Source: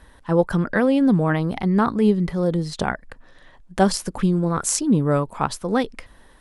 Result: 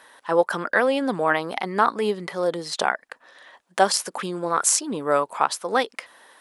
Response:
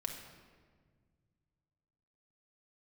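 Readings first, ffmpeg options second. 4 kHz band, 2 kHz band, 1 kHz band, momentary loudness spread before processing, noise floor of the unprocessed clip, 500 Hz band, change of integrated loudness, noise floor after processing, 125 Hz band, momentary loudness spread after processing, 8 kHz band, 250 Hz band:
+4.0 dB, +4.0 dB, +3.5 dB, 8 LU, −51 dBFS, −0.5 dB, −2.0 dB, −64 dBFS, −17.0 dB, 8 LU, +3.0 dB, −11.0 dB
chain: -filter_complex "[0:a]highpass=590,asplit=2[link_01][link_02];[link_02]alimiter=limit=-12dB:level=0:latency=1:release=443,volume=1dB[link_03];[link_01][link_03]amix=inputs=2:normalize=0,volume=-1.5dB"

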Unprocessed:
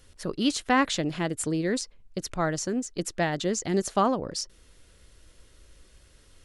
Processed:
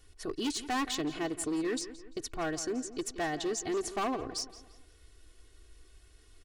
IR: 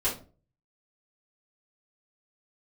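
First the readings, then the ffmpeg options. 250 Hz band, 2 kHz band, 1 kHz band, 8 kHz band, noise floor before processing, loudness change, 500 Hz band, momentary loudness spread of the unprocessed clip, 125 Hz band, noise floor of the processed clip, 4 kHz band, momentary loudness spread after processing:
−6.5 dB, −7.5 dB, −7.5 dB, −5.0 dB, −58 dBFS, −6.5 dB, −6.0 dB, 11 LU, −14.5 dB, −60 dBFS, −5.0 dB, 8 LU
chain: -filter_complex "[0:a]aecho=1:1:2.7:0.81,asoftclip=type=hard:threshold=-22dB,asplit=2[link_01][link_02];[link_02]adelay=172,lowpass=frequency=4300:poles=1,volume=-14dB,asplit=2[link_03][link_04];[link_04]adelay=172,lowpass=frequency=4300:poles=1,volume=0.43,asplit=2[link_05][link_06];[link_06]adelay=172,lowpass=frequency=4300:poles=1,volume=0.43,asplit=2[link_07][link_08];[link_08]adelay=172,lowpass=frequency=4300:poles=1,volume=0.43[link_09];[link_01][link_03][link_05][link_07][link_09]amix=inputs=5:normalize=0,volume=-6.5dB"

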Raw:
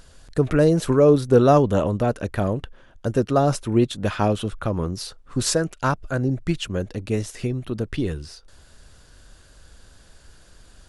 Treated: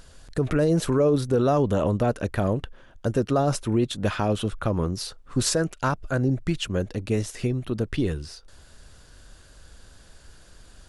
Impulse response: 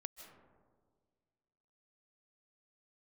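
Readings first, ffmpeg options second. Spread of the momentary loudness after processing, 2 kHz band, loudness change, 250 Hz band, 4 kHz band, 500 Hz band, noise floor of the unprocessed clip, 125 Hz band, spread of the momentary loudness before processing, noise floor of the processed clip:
8 LU, −1.5 dB, −3.0 dB, −2.5 dB, −1.0 dB, −4.0 dB, −52 dBFS, −2.0 dB, 13 LU, −52 dBFS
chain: -af "alimiter=limit=-13dB:level=0:latency=1:release=57"

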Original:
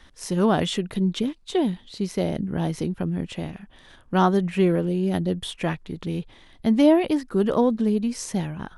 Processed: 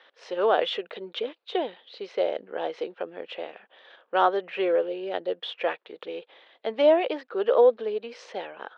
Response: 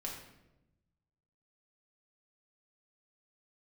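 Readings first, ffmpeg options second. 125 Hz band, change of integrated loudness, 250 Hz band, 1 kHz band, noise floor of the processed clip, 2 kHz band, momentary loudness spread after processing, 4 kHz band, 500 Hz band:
below −30 dB, −2.5 dB, −15.0 dB, +0.5 dB, −71 dBFS, 0.0 dB, 17 LU, −1.5 dB, +1.5 dB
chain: -af "highpass=frequency=470:width=0.5412,highpass=frequency=470:width=1.3066,equalizer=frequency=490:width_type=q:width=4:gain=7,equalizer=frequency=1000:width_type=q:width=4:gain=-4,equalizer=frequency=2000:width_type=q:width=4:gain=-3,lowpass=frequency=3500:width=0.5412,lowpass=frequency=3500:width=1.3066,volume=1.5dB"

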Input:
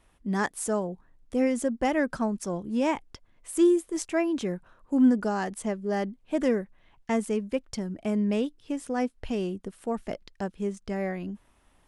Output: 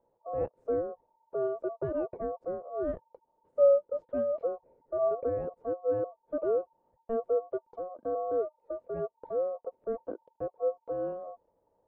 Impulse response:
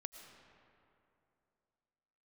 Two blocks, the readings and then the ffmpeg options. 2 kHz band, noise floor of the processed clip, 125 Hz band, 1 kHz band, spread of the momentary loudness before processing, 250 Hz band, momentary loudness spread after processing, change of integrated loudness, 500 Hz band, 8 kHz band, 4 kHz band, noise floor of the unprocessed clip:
below −20 dB, −76 dBFS, −11.5 dB, −6.0 dB, 13 LU, −17.0 dB, 11 LU, −4.0 dB, +1.0 dB, below −40 dB, below −35 dB, −64 dBFS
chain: -af "aeval=exprs='val(0)*sin(2*PI*910*n/s)':channel_layout=same,lowpass=frequency=510:width_type=q:width=5.9,volume=-6dB"

